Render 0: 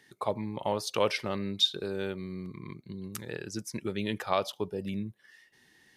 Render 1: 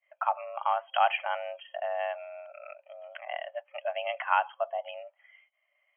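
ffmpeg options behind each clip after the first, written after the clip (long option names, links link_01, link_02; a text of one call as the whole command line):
ffmpeg -i in.wav -af "agate=range=-33dB:threshold=-52dB:ratio=3:detection=peak,afftfilt=real='re*between(b*sr/4096,290,3000)':imag='im*between(b*sr/4096,290,3000)':win_size=4096:overlap=0.75,afreqshift=260,volume=3dB" out.wav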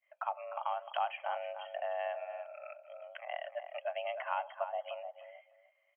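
ffmpeg -i in.wav -filter_complex "[0:a]acrossover=split=910|2700[link_01][link_02][link_03];[link_01]acompressor=threshold=-30dB:ratio=4[link_04];[link_02]acompressor=threshold=-40dB:ratio=4[link_05];[link_03]acompressor=threshold=-49dB:ratio=4[link_06];[link_04][link_05][link_06]amix=inputs=3:normalize=0,asplit=2[link_07][link_08];[link_08]adelay=302,lowpass=frequency=1200:poles=1,volume=-6.5dB,asplit=2[link_09][link_10];[link_10]adelay=302,lowpass=frequency=1200:poles=1,volume=0.23,asplit=2[link_11][link_12];[link_12]adelay=302,lowpass=frequency=1200:poles=1,volume=0.23[link_13];[link_09][link_11][link_13]amix=inputs=3:normalize=0[link_14];[link_07][link_14]amix=inputs=2:normalize=0,volume=-3.5dB" out.wav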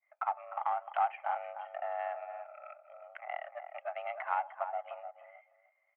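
ffmpeg -i in.wav -af "aeval=exprs='if(lt(val(0),0),0.708*val(0),val(0))':channel_layout=same,adynamicsmooth=sensitivity=3:basefreq=2000,highpass=frequency=390:width=0.5412,highpass=frequency=390:width=1.3066,equalizer=frequency=550:width_type=q:width=4:gain=-5,equalizer=frequency=800:width_type=q:width=4:gain=9,equalizer=frequency=1300:width_type=q:width=4:gain=8,equalizer=frequency=2100:width_type=q:width=4:gain=9,lowpass=frequency=3000:width=0.5412,lowpass=frequency=3000:width=1.3066,volume=-1.5dB" out.wav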